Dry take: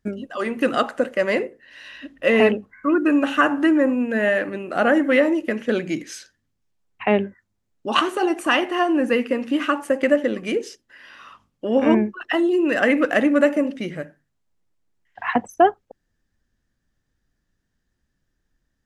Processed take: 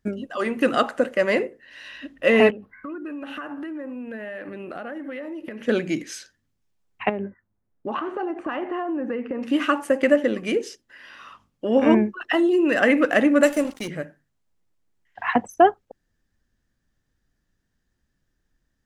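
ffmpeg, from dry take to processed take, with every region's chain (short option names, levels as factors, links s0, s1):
-filter_complex "[0:a]asettb=1/sr,asplit=3[s0][s1][s2];[s0]atrim=end=2.504[s3];[s1]atrim=start=2.5:end=5.63,asetpts=PTS-STARTPTS,afade=t=in:d=0.004:c=qsin,afade=t=out:st=3.126:d=0.004:c=qsin,equalizer=f=7000:w=1.7:g=-11.5,acompressor=threshold=0.0282:ratio=8:attack=3.2:release=140:knee=1:detection=peak[s4];[s2]atrim=start=5.626[s5];[s3][s4]acrossfade=d=0.004:c1=hsin:c2=qsin[s6];[s6][s5]acrossfade=d=0.004:c1=qsin:c2=hsin,asettb=1/sr,asplit=3[s7][s8][s9];[s7]atrim=end=7.094[s10];[s8]atrim=start=7.09:end=9.43,asetpts=PTS-STARTPTS,afade=t=in:d=0.004:c=qsin,afade=t=out:st=2.336:d=0.004:c=qsin,lowpass=1500,acompressor=threshold=0.0708:ratio=12:attack=3.2:release=140:knee=1:detection=peak[s11];[s9]atrim=start=9.426[s12];[s10][s11]acrossfade=d=0.004:c1=hsin:c2=qsin[s13];[s13][s12]acrossfade=d=0.004:c1=qsin:c2=hsin,asettb=1/sr,asplit=3[s14][s15][s16];[s14]atrim=end=13.434[s17];[s15]atrim=start=13.43:end=13.88,asetpts=PTS-STARTPTS,afade=t=in:d=0.004:c=qsin,afade=t=out:st=0.446:d=0.004:c=qsin,bass=f=250:g=-4,treble=f=4000:g=15,aeval=exprs='sgn(val(0))*max(abs(val(0))-0.0158,0)':c=same[s18];[s16]atrim=start=13.876[s19];[s17][s18]acrossfade=d=0.004:c1=hsin:c2=qsin[s20];[s20][s19]acrossfade=d=0.004:c1=qsin:c2=hsin"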